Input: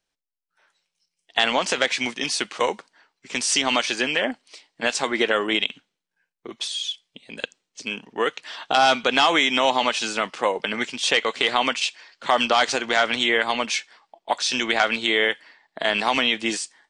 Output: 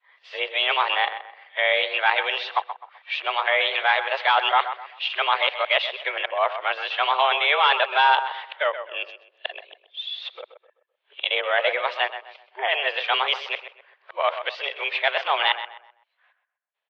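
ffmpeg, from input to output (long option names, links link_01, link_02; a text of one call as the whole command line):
ffmpeg -i in.wav -filter_complex "[0:a]areverse,asplit=2[link_01][link_02];[link_02]adelay=128,lowpass=frequency=2300:poles=1,volume=-10dB,asplit=2[link_03][link_04];[link_04]adelay=128,lowpass=frequency=2300:poles=1,volume=0.35,asplit=2[link_05][link_06];[link_06]adelay=128,lowpass=frequency=2300:poles=1,volume=0.35,asplit=2[link_07][link_08];[link_08]adelay=128,lowpass=frequency=2300:poles=1,volume=0.35[link_09];[link_01][link_03][link_05][link_07][link_09]amix=inputs=5:normalize=0,highpass=frequency=360:width_type=q:width=0.5412,highpass=frequency=360:width_type=q:width=1.307,lowpass=frequency=3300:width_type=q:width=0.5176,lowpass=frequency=3300:width_type=q:width=0.7071,lowpass=frequency=3300:width_type=q:width=1.932,afreqshift=140" out.wav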